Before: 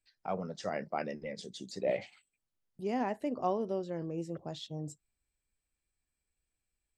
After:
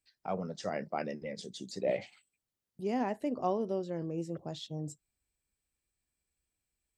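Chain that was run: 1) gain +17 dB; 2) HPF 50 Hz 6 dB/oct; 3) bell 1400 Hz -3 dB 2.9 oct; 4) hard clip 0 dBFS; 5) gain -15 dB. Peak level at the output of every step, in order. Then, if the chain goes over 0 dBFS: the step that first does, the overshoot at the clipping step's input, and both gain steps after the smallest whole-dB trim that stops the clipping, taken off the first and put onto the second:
-1.5, -2.0, -3.5, -3.5, -18.5 dBFS; no overload

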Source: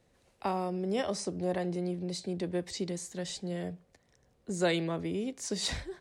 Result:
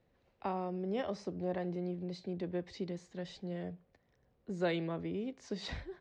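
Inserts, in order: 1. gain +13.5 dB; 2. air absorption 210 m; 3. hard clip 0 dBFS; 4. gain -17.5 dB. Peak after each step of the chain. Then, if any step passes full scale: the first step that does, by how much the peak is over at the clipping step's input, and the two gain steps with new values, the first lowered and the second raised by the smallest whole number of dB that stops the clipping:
-3.5, -4.0, -4.0, -21.5 dBFS; no overload

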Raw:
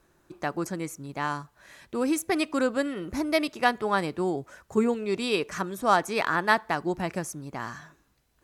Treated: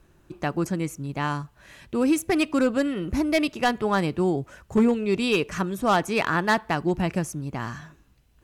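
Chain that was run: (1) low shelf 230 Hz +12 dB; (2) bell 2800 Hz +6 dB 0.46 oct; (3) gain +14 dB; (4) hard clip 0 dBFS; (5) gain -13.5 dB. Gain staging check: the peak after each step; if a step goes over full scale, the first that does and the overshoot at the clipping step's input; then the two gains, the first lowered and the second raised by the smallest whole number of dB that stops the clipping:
-7.0, -6.5, +7.5, 0.0, -13.5 dBFS; step 3, 7.5 dB; step 3 +6 dB, step 5 -5.5 dB

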